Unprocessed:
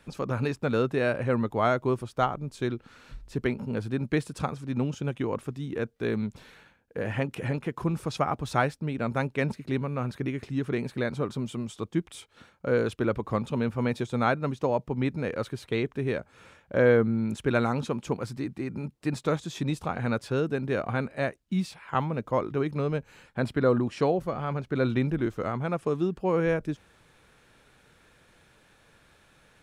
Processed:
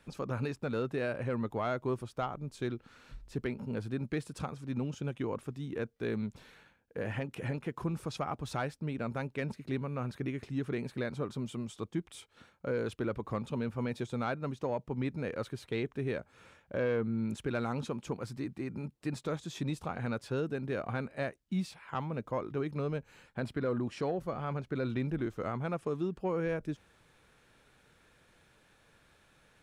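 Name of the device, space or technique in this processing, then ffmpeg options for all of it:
soft clipper into limiter: -af "asoftclip=type=tanh:threshold=-14dB,alimiter=limit=-19.5dB:level=0:latency=1:release=210,volume=-5dB"

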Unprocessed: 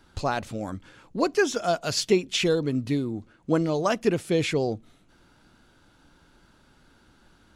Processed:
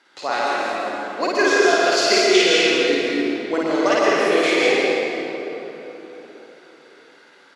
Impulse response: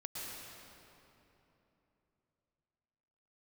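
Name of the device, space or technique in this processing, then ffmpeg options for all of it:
station announcement: -filter_complex "[0:a]highpass=390,lowpass=4600,equalizer=frequency=2000:width_type=o:width=0.34:gain=9,aecho=1:1:52.48|221.6:0.891|0.251[link_01];[1:a]atrim=start_sample=2205[link_02];[link_01][link_02]afir=irnorm=-1:irlink=0,highpass=210,aemphasis=mode=production:type=50kf,asplit=2[link_03][link_04];[link_04]adelay=1516,volume=-24dB,highshelf=frequency=4000:gain=-34.1[link_05];[link_03][link_05]amix=inputs=2:normalize=0,volume=6.5dB"

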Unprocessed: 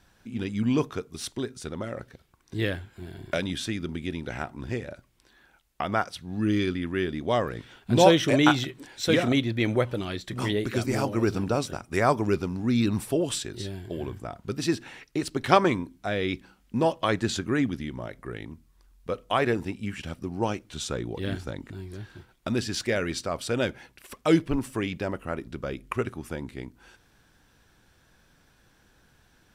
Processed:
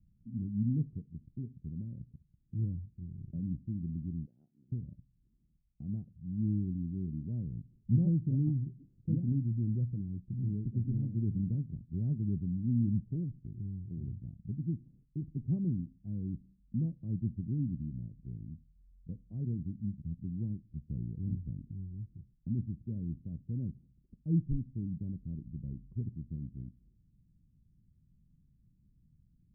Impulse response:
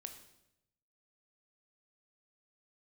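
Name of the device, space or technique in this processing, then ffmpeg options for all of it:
the neighbour's flat through the wall: -filter_complex "[0:a]asettb=1/sr,asplit=3[link_01][link_02][link_03];[link_01]atrim=end=4.264[link_04];[link_02]atrim=start=4.26:end=4.72,asetpts=PTS-STARTPTS,afade=type=in:duration=0.004:curve=qsin,afade=type=out:start_time=0.456:duration=0.004:curve=qsin,highpass=680[link_05];[link_03]atrim=start=4.716[link_06];[link_04][link_05]acrossfade=duration=0.004:curve1=hsin:curve2=qsin[link_07];[link_07][link_06]acrossfade=duration=0.004:curve1=qsin:curve2=hsin,lowpass=frequency=200:width=0.5412,lowpass=frequency=200:width=1.3066,equalizer=frequency=160:width_type=o:width=0.77:gain=4,volume=-2.5dB"

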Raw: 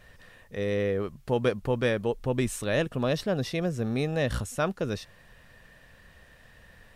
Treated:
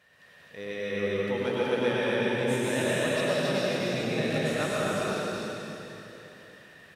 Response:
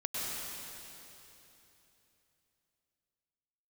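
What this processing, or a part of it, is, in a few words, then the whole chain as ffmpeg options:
stadium PA: -filter_complex "[0:a]highpass=160,equalizer=frequency=2600:width_type=o:width=2.7:gain=5,aecho=1:1:198.3|259.5:0.282|0.794[link_01];[1:a]atrim=start_sample=2205[link_02];[link_01][link_02]afir=irnorm=-1:irlink=0,volume=-7.5dB"

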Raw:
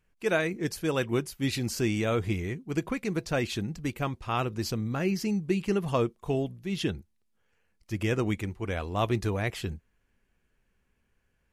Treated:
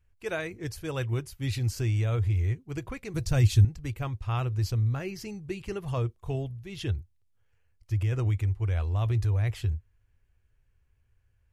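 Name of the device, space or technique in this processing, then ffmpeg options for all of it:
car stereo with a boomy subwoofer: -filter_complex "[0:a]lowshelf=frequency=140:width_type=q:width=3:gain=10,alimiter=limit=-15.5dB:level=0:latency=1:release=24,asettb=1/sr,asplit=3[link_01][link_02][link_03];[link_01]atrim=end=3.144[link_04];[link_02]atrim=start=3.14:end=3.65,asetpts=PTS-STARTPTS,afade=type=in:duration=0.004:curve=qsin,afade=type=out:start_time=0.506:duration=0.004:curve=qsin,bass=frequency=250:gain=10,treble=frequency=4000:gain=10[link_05];[link_03]atrim=start=3.646[link_06];[link_04][link_05]acrossfade=duration=0.004:curve1=hsin:curve2=qsin[link_07];[link_07][link_06]acrossfade=duration=0.004:curve1=qsin:curve2=hsin,volume=-5dB"

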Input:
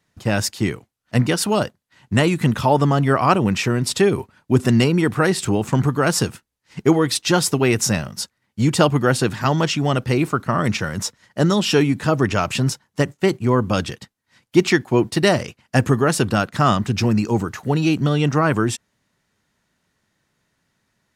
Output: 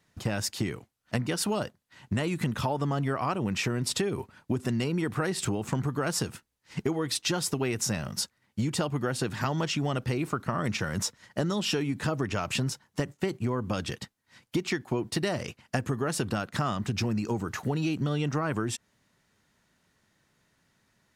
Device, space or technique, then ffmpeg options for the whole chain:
serial compression, peaks first: -af "acompressor=threshold=-22dB:ratio=6,acompressor=threshold=-31dB:ratio=1.5"

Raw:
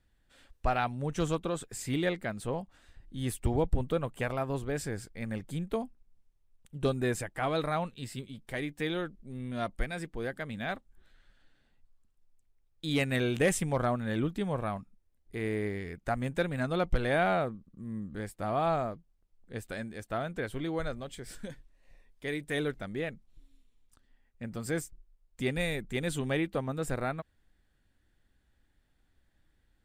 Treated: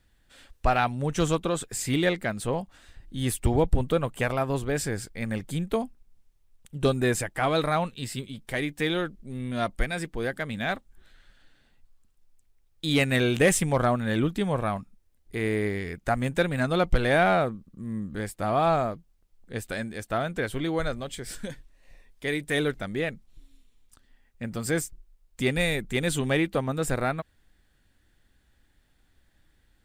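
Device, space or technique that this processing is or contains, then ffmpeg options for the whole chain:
exciter from parts: -filter_complex "[0:a]asplit=2[link_01][link_02];[link_02]highpass=frequency=2300:poles=1,asoftclip=type=tanh:threshold=-33.5dB,volume=-5dB[link_03];[link_01][link_03]amix=inputs=2:normalize=0,volume=5.5dB"

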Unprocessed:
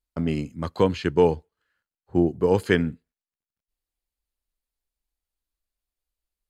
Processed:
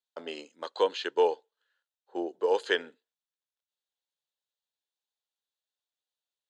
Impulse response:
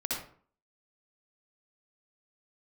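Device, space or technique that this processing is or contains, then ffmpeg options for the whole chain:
phone speaker on a table: -af "highpass=frequency=490:width=0.5412,highpass=frequency=490:width=1.3066,equalizer=frequency=680:width_type=q:width=4:gain=-5,equalizer=frequency=1200:width_type=q:width=4:gain=-7,equalizer=frequency=2200:width_type=q:width=4:gain=-10,equalizer=frequency=3600:width_type=q:width=4:gain=7,equalizer=frequency=5100:width_type=q:width=4:gain=-5,lowpass=frequency=7100:width=0.5412,lowpass=frequency=7100:width=1.3066"

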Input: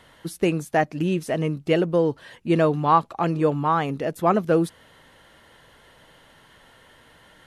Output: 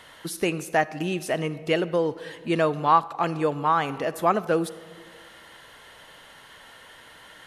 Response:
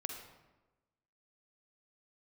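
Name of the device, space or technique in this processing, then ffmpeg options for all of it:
ducked reverb: -filter_complex "[0:a]asplit=3[link_01][link_02][link_03];[1:a]atrim=start_sample=2205[link_04];[link_02][link_04]afir=irnorm=-1:irlink=0[link_05];[link_03]apad=whole_len=329388[link_06];[link_05][link_06]sidechaincompress=threshold=-28dB:ratio=10:attack=16:release=591,volume=2.5dB[link_07];[link_01][link_07]amix=inputs=2:normalize=0,lowshelf=frequency=480:gain=-10"

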